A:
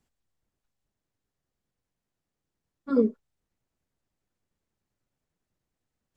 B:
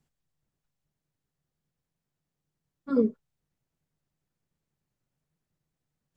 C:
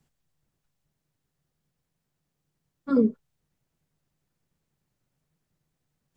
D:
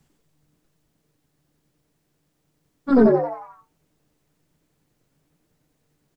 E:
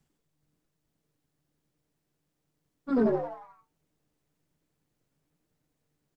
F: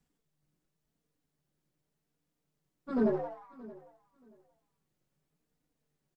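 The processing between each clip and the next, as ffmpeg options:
-af "equalizer=f=150:t=o:w=0.35:g=12.5,volume=0.794"
-filter_complex "[0:a]acrossover=split=280[s0][s1];[s1]acompressor=threshold=0.0316:ratio=2.5[s2];[s0][s2]amix=inputs=2:normalize=0,volume=1.78"
-filter_complex "[0:a]aeval=exprs='(tanh(5.62*val(0)+0.3)-tanh(0.3))/5.62':c=same,asplit=7[s0][s1][s2][s3][s4][s5][s6];[s1]adelay=90,afreqshift=150,volume=0.668[s7];[s2]adelay=180,afreqshift=300,volume=0.295[s8];[s3]adelay=270,afreqshift=450,volume=0.129[s9];[s4]adelay=360,afreqshift=600,volume=0.0569[s10];[s5]adelay=450,afreqshift=750,volume=0.0251[s11];[s6]adelay=540,afreqshift=900,volume=0.011[s12];[s0][s7][s8][s9][s10][s11][s12]amix=inputs=7:normalize=0,volume=2.51"
-af "aeval=exprs='if(lt(val(0),0),0.708*val(0),val(0))':c=same,volume=0.376"
-af "flanger=delay=4.1:depth=1.4:regen=-39:speed=0.89:shape=sinusoidal,aecho=1:1:627|1254:0.1|0.021"

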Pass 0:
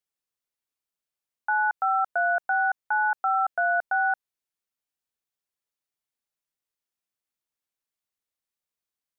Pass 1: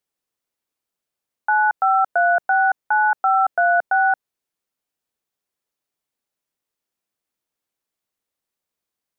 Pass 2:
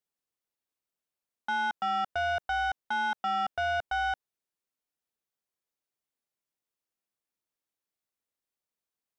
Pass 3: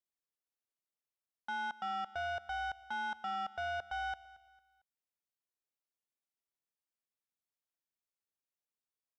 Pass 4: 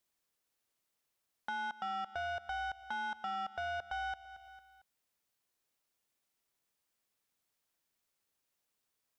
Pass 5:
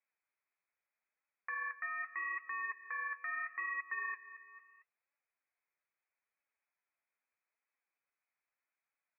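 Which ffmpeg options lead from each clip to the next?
-af "equalizer=f=360:t=o:w=3:g=5.5,volume=1.58"
-af "asoftclip=type=tanh:threshold=0.126,volume=0.422"
-af "aecho=1:1:226|452|678:0.112|0.0415|0.0154,volume=0.376"
-af "acompressor=threshold=0.00141:ratio=2,volume=3.35"
-af "lowpass=f=2200:t=q:w=0.5098,lowpass=f=2200:t=q:w=0.6013,lowpass=f=2200:t=q:w=0.9,lowpass=f=2200:t=q:w=2.563,afreqshift=-2600,aemphasis=mode=production:type=riaa,flanger=delay=3.5:depth=8.3:regen=48:speed=0.78:shape=sinusoidal,volume=1.12"

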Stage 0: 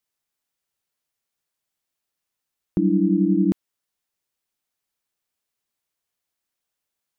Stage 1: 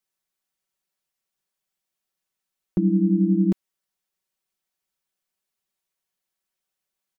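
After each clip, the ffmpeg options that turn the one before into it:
-af "aecho=1:1:5.3:0.65,volume=0.708"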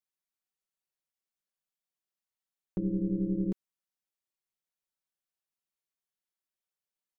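-af "tremolo=f=210:d=0.519,volume=0.376"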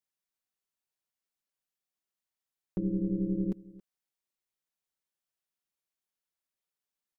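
-af "aecho=1:1:274:0.0944"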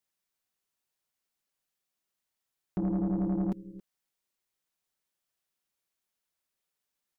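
-af "asoftclip=type=tanh:threshold=0.0335,volume=1.78"

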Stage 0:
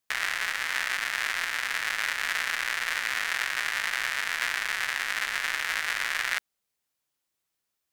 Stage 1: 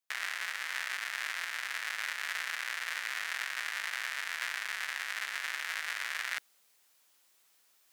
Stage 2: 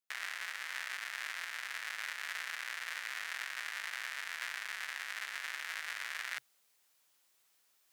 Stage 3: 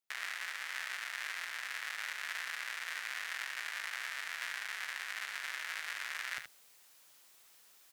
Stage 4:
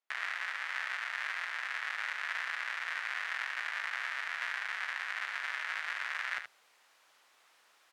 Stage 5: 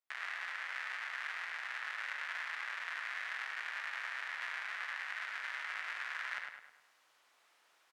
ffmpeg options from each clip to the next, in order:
-af "highpass=f=590:p=1,areverse,acompressor=mode=upward:threshold=0.00794:ratio=2.5,areverse,volume=0.447"
-af "equalizer=f=130:t=o:w=0.24:g=7,volume=0.596"
-af "areverse,acompressor=mode=upward:threshold=0.00251:ratio=2.5,areverse,aecho=1:1:75:0.355"
-af "bandpass=f=1100:t=q:w=0.65:csg=0,volume=2"
-filter_complex "[0:a]asplit=2[s0][s1];[s1]adelay=104,lowpass=f=3500:p=1,volume=0.631,asplit=2[s2][s3];[s3]adelay=104,lowpass=f=3500:p=1,volume=0.48,asplit=2[s4][s5];[s5]adelay=104,lowpass=f=3500:p=1,volume=0.48,asplit=2[s6][s7];[s7]adelay=104,lowpass=f=3500:p=1,volume=0.48,asplit=2[s8][s9];[s9]adelay=104,lowpass=f=3500:p=1,volume=0.48,asplit=2[s10][s11];[s11]adelay=104,lowpass=f=3500:p=1,volume=0.48[s12];[s0][s2][s4][s6][s8][s10][s12]amix=inputs=7:normalize=0,volume=0.531"

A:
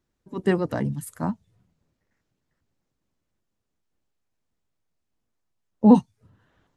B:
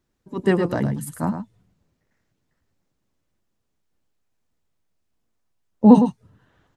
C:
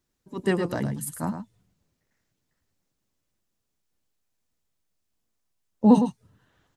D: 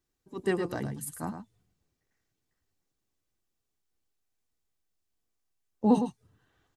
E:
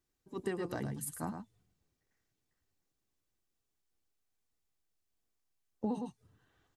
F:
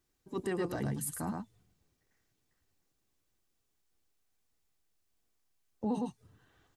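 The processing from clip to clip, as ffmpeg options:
-af "aecho=1:1:109:0.376,volume=1.41"
-af "highshelf=f=3100:g=8.5,volume=0.531"
-af "aecho=1:1:2.6:0.3,volume=0.562"
-af "acompressor=threshold=0.0316:ratio=10,volume=0.794"
-af "alimiter=level_in=2.11:limit=0.0631:level=0:latency=1:release=11,volume=0.473,volume=1.78"

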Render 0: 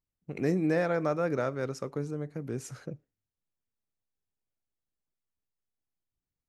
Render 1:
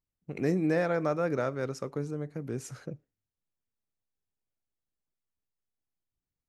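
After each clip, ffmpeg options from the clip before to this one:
-af anull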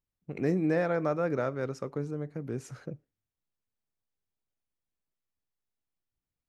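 -af "highshelf=f=4500:g=-8"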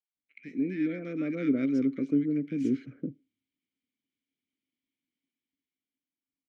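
-filter_complex "[0:a]asplit=3[s0][s1][s2];[s0]bandpass=f=270:t=q:w=8,volume=1[s3];[s1]bandpass=f=2290:t=q:w=8,volume=0.501[s4];[s2]bandpass=f=3010:t=q:w=8,volume=0.355[s5];[s3][s4][s5]amix=inputs=3:normalize=0,dynaudnorm=f=330:g=7:m=3.98,acrossover=split=1300[s6][s7];[s6]adelay=160[s8];[s8][s7]amix=inputs=2:normalize=0,volume=2"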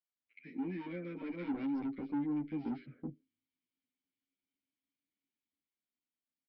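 -filter_complex "[0:a]aresample=11025,asoftclip=type=tanh:threshold=0.0422,aresample=44100,asplit=2[s0][s1];[s1]adelay=9.6,afreqshift=0.32[s2];[s0][s2]amix=inputs=2:normalize=1,volume=0.75"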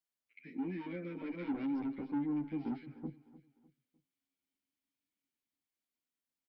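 -af "aecho=1:1:302|604|906:0.141|0.0523|0.0193"

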